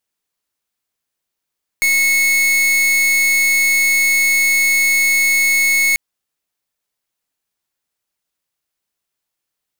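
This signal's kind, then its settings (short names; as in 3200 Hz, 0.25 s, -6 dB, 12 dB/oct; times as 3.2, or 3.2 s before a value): pulse 2190 Hz, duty 44% -14 dBFS 4.14 s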